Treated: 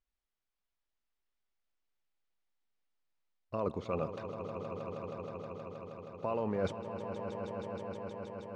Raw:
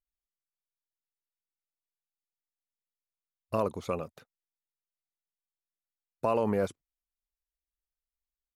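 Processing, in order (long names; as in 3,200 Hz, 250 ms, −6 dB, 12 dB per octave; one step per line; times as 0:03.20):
reversed playback
downward compressor, threshold −37 dBFS, peak gain reduction 14 dB
reversed playback
high-frequency loss of the air 150 metres
echo that builds up and dies away 158 ms, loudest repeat 5, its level −10.5 dB
level +6 dB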